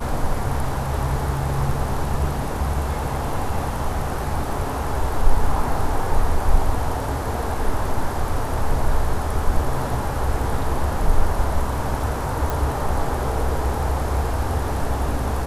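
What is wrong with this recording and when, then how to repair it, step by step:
12.50 s: pop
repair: de-click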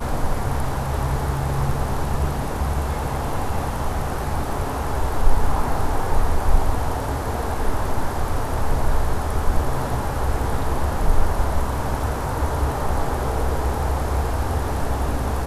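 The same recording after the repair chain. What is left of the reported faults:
nothing left

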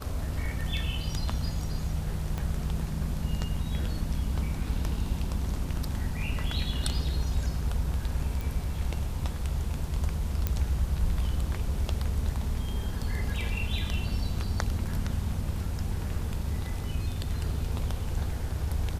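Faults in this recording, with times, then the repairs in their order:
2.38 s: pop -19 dBFS
8.41 s: pop
10.47 s: pop -14 dBFS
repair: de-click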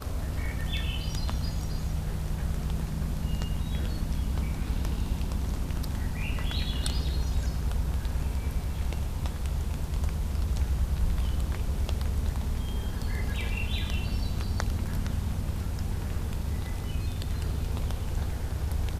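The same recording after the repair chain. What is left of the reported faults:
2.38 s: pop

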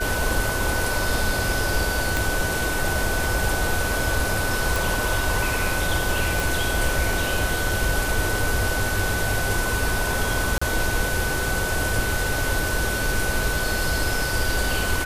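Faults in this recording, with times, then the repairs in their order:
whine 1.5 kHz -27 dBFS
2.17 s: pop
4.76 s: pop
6.40 s: pop
10.58–10.62 s: dropout 35 ms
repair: de-click; band-stop 1.5 kHz, Q 30; interpolate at 10.58 s, 35 ms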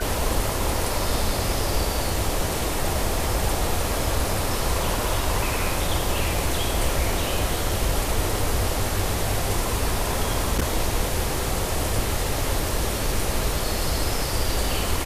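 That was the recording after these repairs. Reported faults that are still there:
2.17 s: pop

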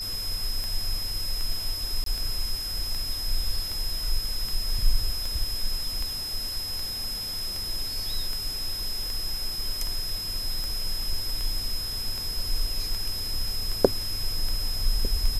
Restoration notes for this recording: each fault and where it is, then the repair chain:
tick 78 rpm
whine 5.1 kHz -31 dBFS
2.04–2.06 s: dropout 23 ms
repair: de-click; band-stop 5.1 kHz, Q 30; interpolate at 2.04 s, 23 ms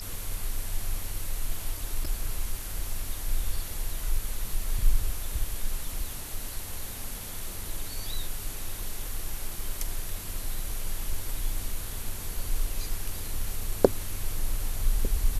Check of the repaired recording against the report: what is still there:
nothing left

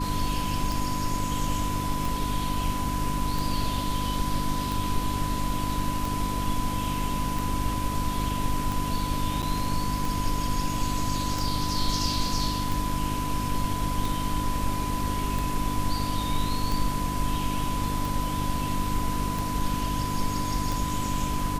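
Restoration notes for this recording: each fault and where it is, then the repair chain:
hum 50 Hz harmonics 6 -32 dBFS
tick 45 rpm
whine 1 kHz -31 dBFS
9.42–9.43 s: dropout 7.7 ms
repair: de-click; de-hum 50 Hz, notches 6; band-stop 1 kHz, Q 30; interpolate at 9.42 s, 7.7 ms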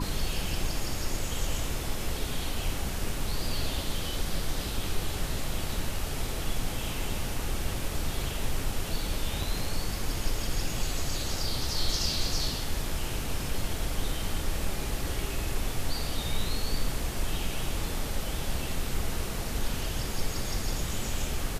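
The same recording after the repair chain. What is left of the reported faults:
nothing left

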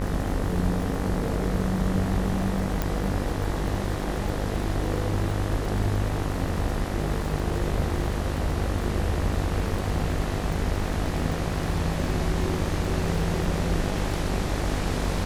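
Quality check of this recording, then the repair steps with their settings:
buzz 50 Hz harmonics 40 -30 dBFS
crackle 57 per s -32 dBFS
2.82 s: pop -11 dBFS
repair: de-click; de-hum 50 Hz, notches 40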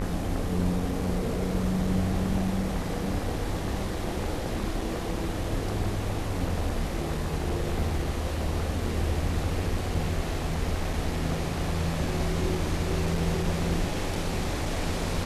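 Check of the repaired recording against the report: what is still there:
nothing left

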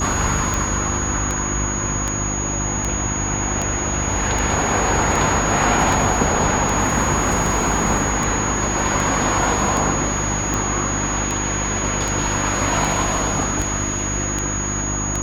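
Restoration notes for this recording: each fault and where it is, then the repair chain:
hum 50 Hz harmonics 7 -26 dBFS
tick 78 rpm
whine 6.7 kHz -24 dBFS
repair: de-click; de-hum 50 Hz, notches 7; band-stop 6.7 kHz, Q 30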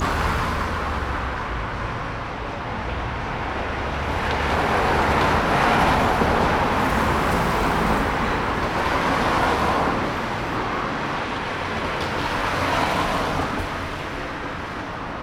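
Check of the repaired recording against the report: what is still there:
nothing left

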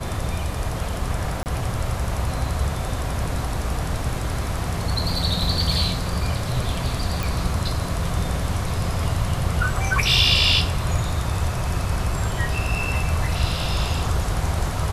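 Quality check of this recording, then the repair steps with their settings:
1.43–1.46 s: dropout 29 ms
7.23 s: pop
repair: de-click; interpolate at 1.43 s, 29 ms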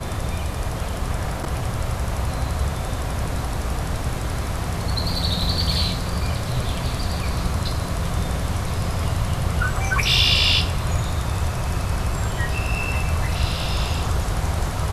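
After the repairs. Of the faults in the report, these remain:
nothing left

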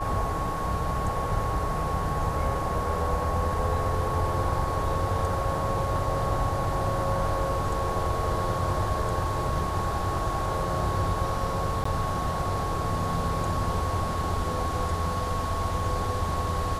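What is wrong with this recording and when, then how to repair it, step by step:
whine 1.1 kHz -31 dBFS
11.84–11.85 s: dropout 14 ms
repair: band-stop 1.1 kHz, Q 30; interpolate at 11.84 s, 14 ms

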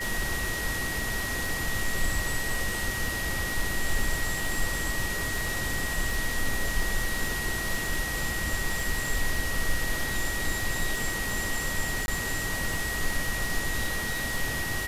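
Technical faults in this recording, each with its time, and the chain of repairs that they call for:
crackle 57 per s -32 dBFS
whine 1.9 kHz -32 dBFS
12.06–12.08 s: dropout 21 ms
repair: de-click; band-stop 1.9 kHz, Q 30; interpolate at 12.06 s, 21 ms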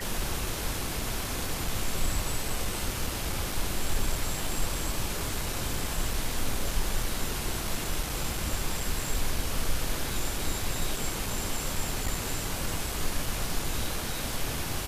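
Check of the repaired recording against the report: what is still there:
nothing left

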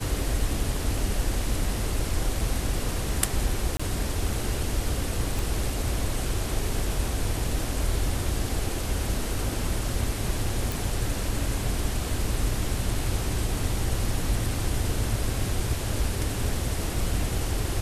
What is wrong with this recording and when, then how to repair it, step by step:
3.77–3.79 s: dropout 25 ms
5.39 s: pop
10.72 s: pop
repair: de-click; interpolate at 3.77 s, 25 ms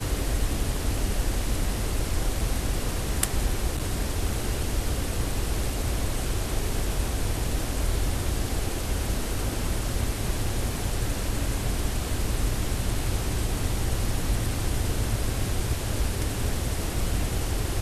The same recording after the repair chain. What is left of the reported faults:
nothing left

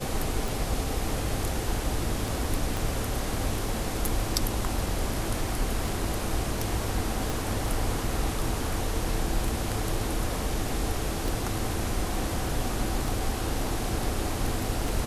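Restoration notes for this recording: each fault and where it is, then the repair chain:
tick 33 1/3 rpm
2.77 s: pop
7.30 s: pop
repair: de-click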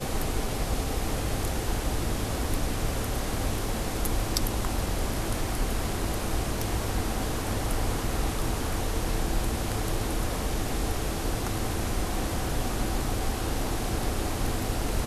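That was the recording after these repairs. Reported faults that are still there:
2.77 s: pop
7.30 s: pop

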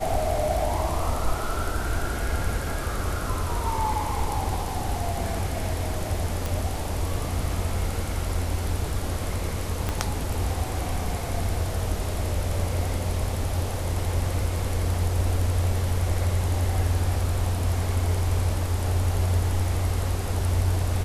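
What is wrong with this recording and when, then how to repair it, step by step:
6.46 s: pop
9.89 s: pop -12 dBFS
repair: de-click

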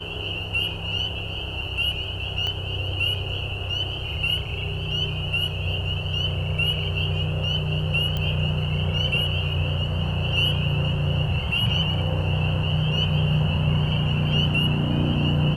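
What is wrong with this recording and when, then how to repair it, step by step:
2.47 s: pop -16 dBFS
8.17 s: pop -15 dBFS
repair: de-click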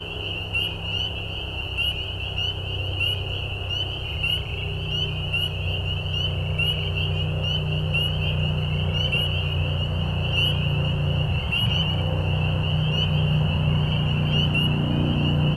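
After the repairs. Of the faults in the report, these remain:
2.47 s: pop
8.17 s: pop

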